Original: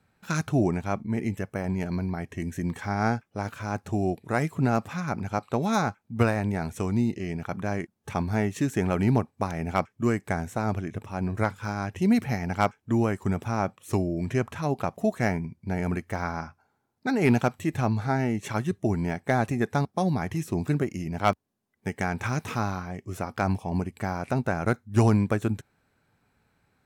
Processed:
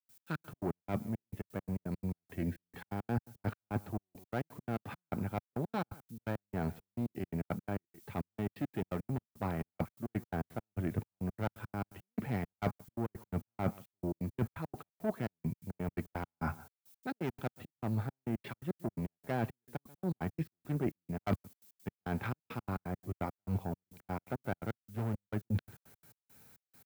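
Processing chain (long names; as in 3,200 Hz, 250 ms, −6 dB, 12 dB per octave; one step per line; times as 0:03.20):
downsampling to 11,025 Hz
tube saturation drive 23 dB, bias 0.65
high-pass filter 86 Hz 12 dB per octave
reversed playback
downward compressor 16 to 1, threshold −47 dBFS, peak gain reduction 24.5 dB
reversed playback
background noise violet −67 dBFS
high-shelf EQ 2,400 Hz −10 dB
notch filter 1,100 Hz, Q 25
on a send: single-tap delay 137 ms −21 dB
on the sum: gate pattern ".x.x.x.x..xxx..x" 170 BPM −60 dB
multiband upward and downward expander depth 40%
level +16.5 dB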